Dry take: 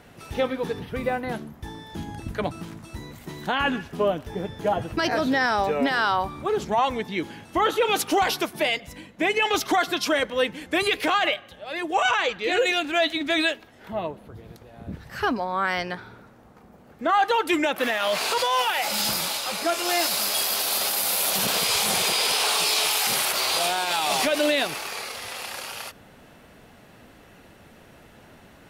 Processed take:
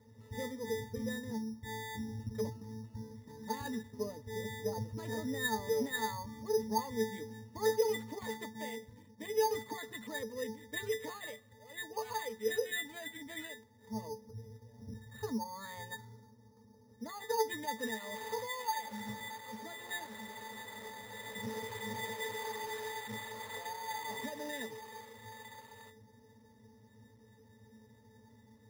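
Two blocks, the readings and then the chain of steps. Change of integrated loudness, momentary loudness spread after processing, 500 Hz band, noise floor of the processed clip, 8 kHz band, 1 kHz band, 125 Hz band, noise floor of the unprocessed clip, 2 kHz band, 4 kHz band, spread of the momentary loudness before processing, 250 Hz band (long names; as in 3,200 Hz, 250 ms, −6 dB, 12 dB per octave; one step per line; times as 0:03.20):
−15.5 dB, 15 LU, −11.5 dB, −62 dBFS, −18.5 dB, −16.0 dB, −7.5 dB, −51 dBFS, −16.5 dB, −21.0 dB, 14 LU, −12.5 dB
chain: resonances in every octave A, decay 0.19 s
bad sample-rate conversion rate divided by 8×, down none, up hold
level +1 dB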